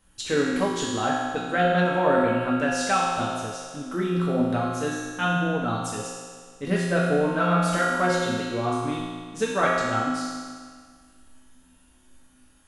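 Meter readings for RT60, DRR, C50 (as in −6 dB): 1.8 s, −6.5 dB, −1.0 dB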